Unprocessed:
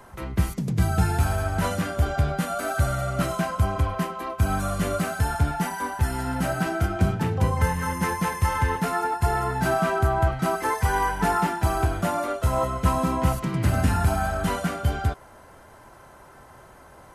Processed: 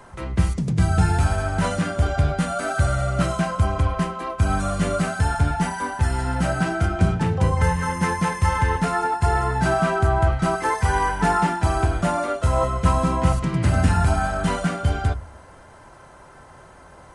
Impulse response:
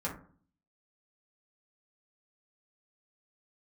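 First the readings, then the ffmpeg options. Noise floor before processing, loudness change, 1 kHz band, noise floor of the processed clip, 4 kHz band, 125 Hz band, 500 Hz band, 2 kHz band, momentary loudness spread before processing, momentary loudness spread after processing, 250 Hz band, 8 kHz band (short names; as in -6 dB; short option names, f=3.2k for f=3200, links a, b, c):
-49 dBFS, +3.0 dB, +2.5 dB, -46 dBFS, +2.5 dB, +3.5 dB, +2.5 dB, +3.0 dB, 4 LU, 4 LU, +3.0 dB, +1.5 dB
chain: -filter_complex "[0:a]asplit=2[a][b];[b]equalizer=f=330:w=0.33:g=-5.5[c];[1:a]atrim=start_sample=2205,lowshelf=f=85:g=11[d];[c][d]afir=irnorm=-1:irlink=0,volume=-16dB[e];[a][e]amix=inputs=2:normalize=0,aresample=22050,aresample=44100,volume=1.5dB"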